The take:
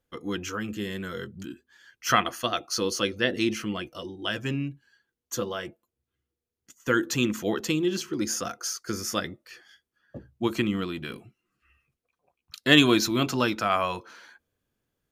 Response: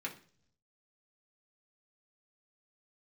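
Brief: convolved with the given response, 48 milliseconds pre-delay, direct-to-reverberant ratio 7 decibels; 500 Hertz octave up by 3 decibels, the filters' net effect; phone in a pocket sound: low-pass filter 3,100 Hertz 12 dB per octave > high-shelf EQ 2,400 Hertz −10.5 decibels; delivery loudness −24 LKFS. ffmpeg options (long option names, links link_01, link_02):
-filter_complex "[0:a]equalizer=frequency=500:width_type=o:gain=4.5,asplit=2[link_01][link_02];[1:a]atrim=start_sample=2205,adelay=48[link_03];[link_02][link_03]afir=irnorm=-1:irlink=0,volume=-8.5dB[link_04];[link_01][link_04]amix=inputs=2:normalize=0,lowpass=3100,highshelf=frequency=2400:gain=-10.5,volume=3dB"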